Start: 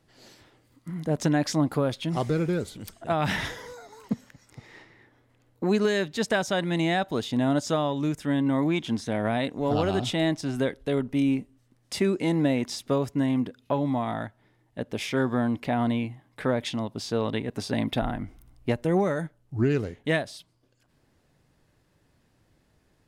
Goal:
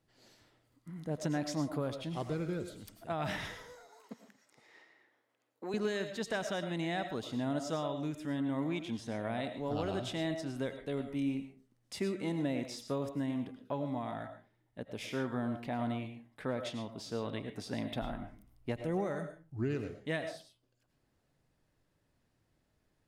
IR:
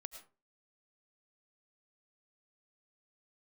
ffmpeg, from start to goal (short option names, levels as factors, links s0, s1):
-filter_complex "[0:a]asettb=1/sr,asplit=3[s0][s1][s2];[s0]atrim=end=3.754[s3];[s1]atrim=start=3.75:end=5.74,asetpts=PTS-STARTPTS,afade=t=in:d=0.004:c=qsin,afade=t=out:st=1.986:d=0.004:c=qsin,highpass=380[s4];[s2]atrim=start=5.736[s5];[s3][s4]acrossfade=d=0.004:c1=hsin:c2=qsin[s6];[s6][s5]acrossfade=d=0.004:c1=qsin:c2=hsin[s7];[1:a]atrim=start_sample=2205,afade=t=out:st=0.35:d=0.01,atrim=end_sample=15876[s8];[s7][s8]afir=irnorm=-1:irlink=0,volume=0.531"